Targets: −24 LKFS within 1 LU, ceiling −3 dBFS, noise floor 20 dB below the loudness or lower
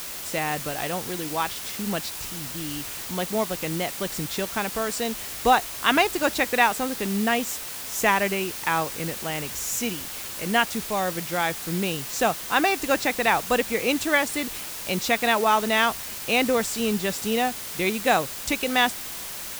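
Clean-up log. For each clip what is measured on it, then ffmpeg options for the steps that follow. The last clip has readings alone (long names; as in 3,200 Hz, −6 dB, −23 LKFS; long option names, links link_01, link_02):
background noise floor −35 dBFS; target noise floor −45 dBFS; integrated loudness −24.5 LKFS; sample peak −4.0 dBFS; target loudness −24.0 LKFS
→ -af "afftdn=noise_reduction=10:noise_floor=-35"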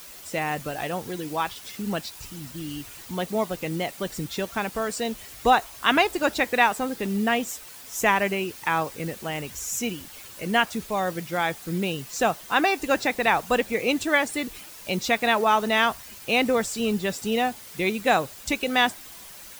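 background noise floor −44 dBFS; target noise floor −45 dBFS
→ -af "afftdn=noise_reduction=6:noise_floor=-44"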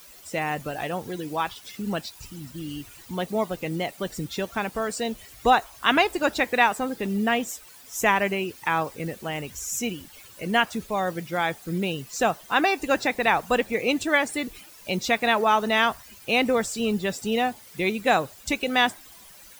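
background noise floor −48 dBFS; integrated loudness −25.0 LKFS; sample peak −4.5 dBFS; target loudness −24.0 LKFS
→ -af "volume=1dB"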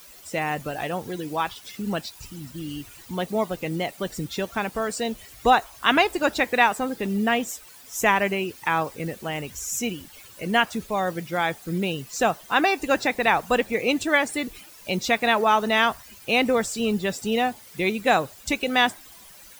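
integrated loudness −24.0 LKFS; sample peak −3.5 dBFS; background noise floor −47 dBFS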